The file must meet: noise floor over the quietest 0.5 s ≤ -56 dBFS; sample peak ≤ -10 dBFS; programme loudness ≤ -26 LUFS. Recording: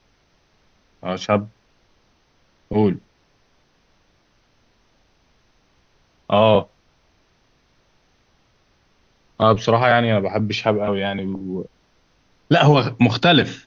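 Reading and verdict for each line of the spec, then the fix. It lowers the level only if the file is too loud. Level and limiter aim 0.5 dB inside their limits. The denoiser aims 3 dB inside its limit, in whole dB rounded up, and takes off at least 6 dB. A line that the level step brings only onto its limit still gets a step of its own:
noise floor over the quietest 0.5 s -61 dBFS: pass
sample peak -2.5 dBFS: fail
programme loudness -18.5 LUFS: fail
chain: trim -8 dB

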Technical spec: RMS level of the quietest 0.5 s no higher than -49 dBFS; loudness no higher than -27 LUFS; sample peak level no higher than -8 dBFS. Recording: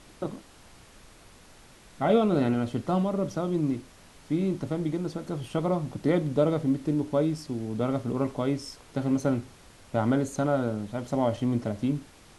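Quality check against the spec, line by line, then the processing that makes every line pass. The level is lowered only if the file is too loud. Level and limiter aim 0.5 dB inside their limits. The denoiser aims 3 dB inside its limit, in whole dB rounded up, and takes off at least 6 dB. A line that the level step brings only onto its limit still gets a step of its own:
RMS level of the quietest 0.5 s -53 dBFS: pass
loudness -28.0 LUFS: pass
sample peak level -11.0 dBFS: pass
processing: none needed

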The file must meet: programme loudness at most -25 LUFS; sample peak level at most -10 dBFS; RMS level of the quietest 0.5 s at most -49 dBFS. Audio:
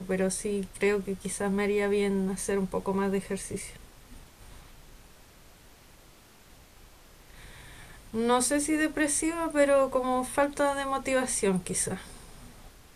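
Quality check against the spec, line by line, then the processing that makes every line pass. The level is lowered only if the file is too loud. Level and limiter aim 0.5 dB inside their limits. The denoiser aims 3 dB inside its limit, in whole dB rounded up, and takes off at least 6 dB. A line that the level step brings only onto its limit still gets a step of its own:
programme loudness -28.0 LUFS: pass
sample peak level -12.0 dBFS: pass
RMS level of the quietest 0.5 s -55 dBFS: pass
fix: none needed

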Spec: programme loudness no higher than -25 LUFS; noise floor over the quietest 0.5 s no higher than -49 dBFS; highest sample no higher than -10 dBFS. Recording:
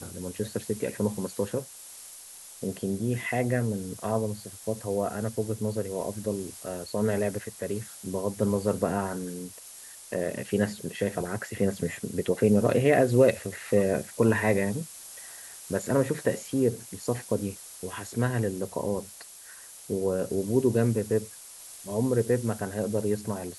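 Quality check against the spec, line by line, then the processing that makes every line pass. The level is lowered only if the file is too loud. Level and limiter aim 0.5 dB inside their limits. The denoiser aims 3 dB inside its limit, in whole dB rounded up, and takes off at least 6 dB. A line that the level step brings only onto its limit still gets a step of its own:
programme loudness -28.5 LUFS: pass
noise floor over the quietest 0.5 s -47 dBFS: fail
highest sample -9.0 dBFS: fail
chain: noise reduction 6 dB, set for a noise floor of -47 dBFS; peak limiter -10.5 dBFS

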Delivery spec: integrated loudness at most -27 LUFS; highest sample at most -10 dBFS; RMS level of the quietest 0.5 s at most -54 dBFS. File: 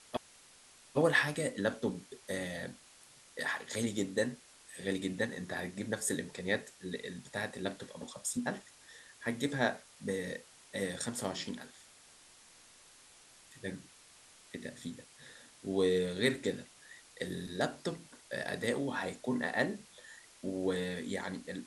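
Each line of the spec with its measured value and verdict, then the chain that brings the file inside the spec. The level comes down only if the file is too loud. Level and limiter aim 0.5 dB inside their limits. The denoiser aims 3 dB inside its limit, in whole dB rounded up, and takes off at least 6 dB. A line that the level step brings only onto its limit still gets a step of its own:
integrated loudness -36.5 LUFS: pass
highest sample -14.0 dBFS: pass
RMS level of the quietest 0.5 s -60 dBFS: pass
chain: none needed

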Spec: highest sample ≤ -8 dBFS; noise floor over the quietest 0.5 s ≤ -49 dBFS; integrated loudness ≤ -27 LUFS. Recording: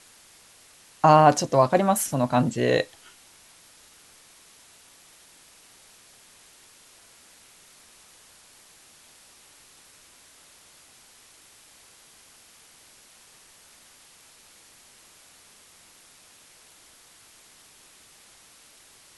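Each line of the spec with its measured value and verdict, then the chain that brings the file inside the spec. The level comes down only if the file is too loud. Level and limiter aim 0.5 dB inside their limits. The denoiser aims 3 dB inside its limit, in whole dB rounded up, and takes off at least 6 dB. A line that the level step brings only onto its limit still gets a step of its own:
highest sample -3.5 dBFS: fail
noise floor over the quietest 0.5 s -54 dBFS: pass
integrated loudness -21.0 LUFS: fail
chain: trim -6.5 dB

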